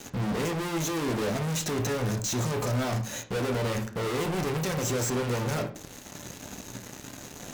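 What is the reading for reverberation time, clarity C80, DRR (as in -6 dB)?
0.45 s, 17.0 dB, 4.5 dB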